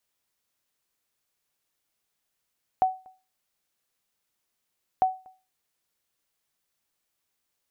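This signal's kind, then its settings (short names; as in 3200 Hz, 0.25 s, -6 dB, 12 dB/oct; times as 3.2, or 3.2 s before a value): sonar ping 751 Hz, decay 0.31 s, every 2.20 s, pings 2, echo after 0.24 s, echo -28.5 dB -14 dBFS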